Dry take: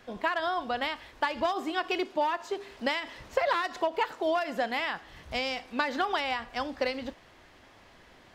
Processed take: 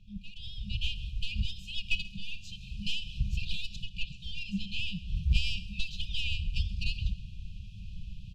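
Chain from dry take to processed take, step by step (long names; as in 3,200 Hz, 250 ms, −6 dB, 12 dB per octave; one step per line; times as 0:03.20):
stylus tracing distortion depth 0.026 ms
brick-wall band-stop 210–2,400 Hz
RIAA equalisation playback
0:03.72–0:04.79: treble cut that deepens with the level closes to 1,500 Hz, closed at −27 dBFS
automatic gain control gain up to 13 dB
in parallel at −10.5 dB: hard clipping −14.5 dBFS, distortion −17 dB
0:02.03–0:02.51: on the sum: double-tracking delay 43 ms −10.5 dB
on a send: repeating echo 133 ms, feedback 39%, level −19 dB
on the sum: level −8 dB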